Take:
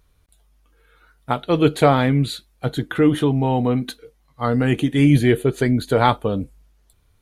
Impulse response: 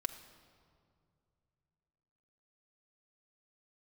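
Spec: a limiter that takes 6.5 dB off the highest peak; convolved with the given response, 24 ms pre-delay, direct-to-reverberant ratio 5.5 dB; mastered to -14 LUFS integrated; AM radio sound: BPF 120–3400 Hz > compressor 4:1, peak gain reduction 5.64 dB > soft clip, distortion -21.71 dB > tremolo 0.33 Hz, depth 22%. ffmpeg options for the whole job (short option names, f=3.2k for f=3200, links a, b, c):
-filter_complex "[0:a]alimiter=limit=-8.5dB:level=0:latency=1,asplit=2[a][b];[1:a]atrim=start_sample=2205,adelay=24[c];[b][c]afir=irnorm=-1:irlink=0,volume=-5.5dB[d];[a][d]amix=inputs=2:normalize=0,highpass=120,lowpass=3.4k,acompressor=threshold=-16dB:ratio=4,asoftclip=threshold=-10.5dB,tremolo=f=0.33:d=0.22,volume=10.5dB"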